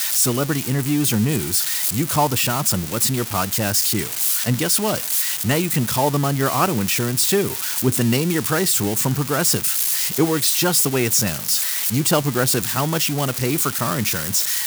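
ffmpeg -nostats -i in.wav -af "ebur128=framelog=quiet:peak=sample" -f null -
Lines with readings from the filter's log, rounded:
Integrated loudness:
  I:         -18.4 LUFS
  Threshold: -28.4 LUFS
Loudness range:
  LRA:         1.5 LU
  Threshold: -38.3 LUFS
  LRA low:   -18.9 LUFS
  LRA high:  -17.4 LUFS
Sample peak:
  Peak:       -5.3 dBFS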